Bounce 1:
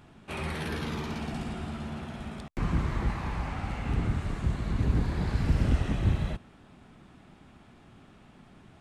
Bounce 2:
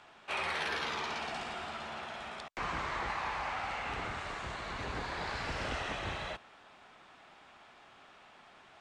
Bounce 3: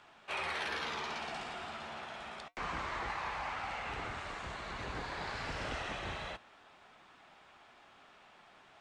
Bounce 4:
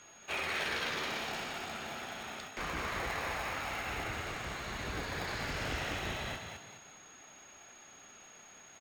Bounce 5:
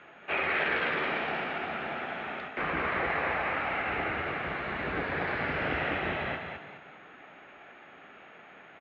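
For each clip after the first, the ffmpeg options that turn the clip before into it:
ffmpeg -i in.wav -filter_complex "[0:a]acrossover=split=520 7800:gain=0.0708 1 0.0708[link_01][link_02][link_03];[link_01][link_02][link_03]amix=inputs=3:normalize=0,volume=4dB" out.wav
ffmpeg -i in.wav -af "flanger=delay=0.6:depth=7.3:regen=-77:speed=0.28:shape=triangular,volume=2dB" out.wav
ffmpeg -i in.wav -filter_complex "[0:a]acrossover=split=530|970[link_01][link_02][link_03];[link_02]acrusher=samples=29:mix=1:aa=0.000001[link_04];[link_01][link_04][link_03]amix=inputs=3:normalize=0,aeval=exprs='val(0)+0.00112*sin(2*PI*6600*n/s)':channel_layout=same,asplit=5[link_05][link_06][link_07][link_08][link_09];[link_06]adelay=208,afreqshift=33,volume=-5.5dB[link_10];[link_07]adelay=416,afreqshift=66,volume=-14.4dB[link_11];[link_08]adelay=624,afreqshift=99,volume=-23.2dB[link_12];[link_09]adelay=832,afreqshift=132,volume=-32.1dB[link_13];[link_05][link_10][link_11][link_12][link_13]amix=inputs=5:normalize=0,volume=2.5dB" out.wav
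ffmpeg -i in.wav -af "highpass=100,equalizer=frequency=110:width_type=q:width=4:gain=-10,equalizer=frequency=220:width_type=q:width=4:gain=-3,equalizer=frequency=1000:width_type=q:width=4:gain=-4,lowpass=frequency=2500:width=0.5412,lowpass=frequency=2500:width=1.3066,volume=8.5dB" out.wav

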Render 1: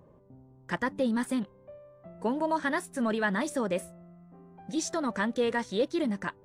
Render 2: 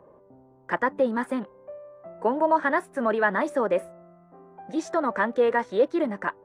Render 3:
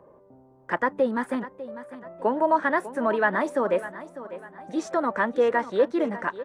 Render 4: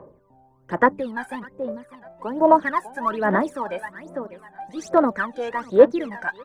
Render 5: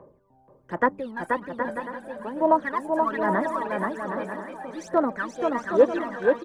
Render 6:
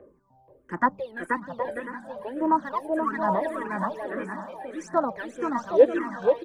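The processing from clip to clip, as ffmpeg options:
ffmpeg -i in.wav -filter_complex "[0:a]acrossover=split=330 2000:gain=0.178 1 0.126[link_01][link_02][link_03];[link_01][link_02][link_03]amix=inputs=3:normalize=0,volume=8.5dB" out.wav
ffmpeg -i in.wav -af "aecho=1:1:599|1198|1797:0.188|0.0678|0.0244" out.wav
ffmpeg -i in.wav -af "aphaser=in_gain=1:out_gain=1:delay=1.3:decay=0.79:speed=1.2:type=sinusoidal,volume=-3.5dB" out.wav
ffmpeg -i in.wav -af "aecho=1:1:480|768|940.8|1044|1107:0.631|0.398|0.251|0.158|0.1,volume=-5dB" out.wav
ffmpeg -i in.wav -filter_complex "[0:a]asplit=2[link_01][link_02];[link_02]afreqshift=-1.7[link_03];[link_01][link_03]amix=inputs=2:normalize=1,volume=1.5dB" out.wav

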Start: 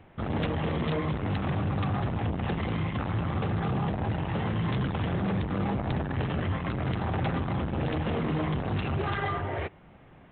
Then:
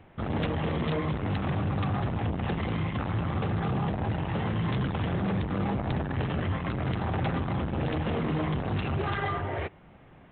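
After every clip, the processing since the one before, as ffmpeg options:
ffmpeg -i in.wav -af anull out.wav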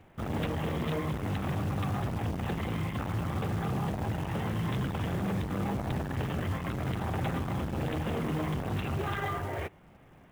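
ffmpeg -i in.wav -af "acrusher=bits=5:mode=log:mix=0:aa=0.000001,volume=-3dB" out.wav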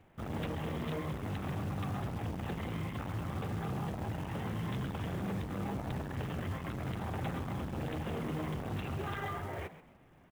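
ffmpeg -i in.wav -filter_complex "[0:a]asplit=4[link_01][link_02][link_03][link_04];[link_02]adelay=131,afreqshift=82,volume=-14dB[link_05];[link_03]adelay=262,afreqshift=164,volume=-24.2dB[link_06];[link_04]adelay=393,afreqshift=246,volume=-34.3dB[link_07];[link_01][link_05][link_06][link_07]amix=inputs=4:normalize=0,volume=-5.5dB" out.wav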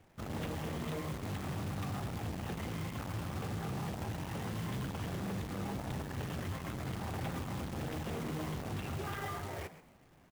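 ffmpeg -i in.wav -af "acrusher=bits=2:mode=log:mix=0:aa=0.000001,volume=-2dB" out.wav

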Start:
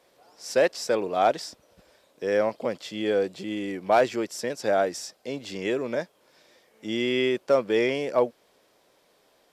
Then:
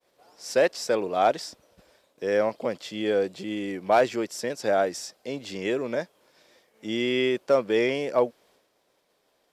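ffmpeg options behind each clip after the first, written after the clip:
ffmpeg -i in.wav -af "agate=range=-33dB:threshold=-57dB:ratio=3:detection=peak" out.wav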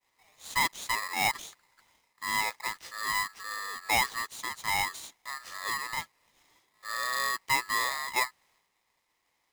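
ffmpeg -i in.wav -af "aeval=exprs='val(0)*sgn(sin(2*PI*1500*n/s))':channel_layout=same,volume=-6.5dB" out.wav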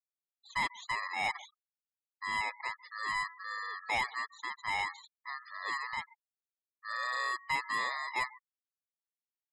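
ffmpeg -i in.wav -filter_complex "[0:a]asplit=2[link_01][link_02];[link_02]highpass=frequency=720:poles=1,volume=11dB,asoftclip=type=tanh:threshold=-17dB[link_03];[link_01][link_03]amix=inputs=2:normalize=0,lowpass=frequency=2800:poles=1,volume=-6dB,asplit=2[link_04][link_05];[link_05]adelay=139.9,volume=-20dB,highshelf=frequency=4000:gain=-3.15[link_06];[link_04][link_06]amix=inputs=2:normalize=0,afftfilt=real='re*gte(hypot(re,im),0.0158)':imag='im*gte(hypot(re,im),0.0158)':win_size=1024:overlap=0.75,volume=-6dB" out.wav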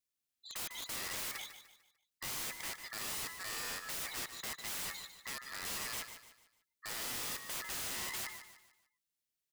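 ffmpeg -i in.wav -af "equalizer=frequency=880:width_type=o:width=1.4:gain=-12,aeval=exprs='(mod(126*val(0)+1,2)-1)/126':channel_layout=same,aecho=1:1:149|298|447|596:0.299|0.113|0.0431|0.0164,volume=6.5dB" out.wav

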